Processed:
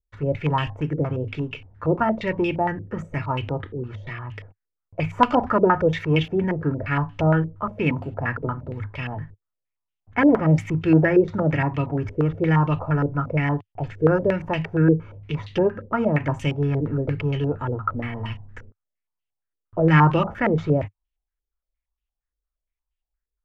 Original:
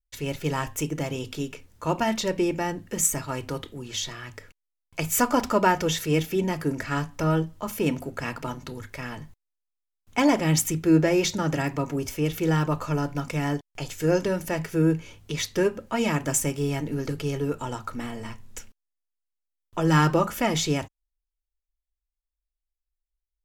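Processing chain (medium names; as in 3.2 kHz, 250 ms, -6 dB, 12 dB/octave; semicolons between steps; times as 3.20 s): peaking EQ 100 Hz +14 dB 1.1 oct; step-sequenced low-pass 8.6 Hz 450–2900 Hz; trim -1 dB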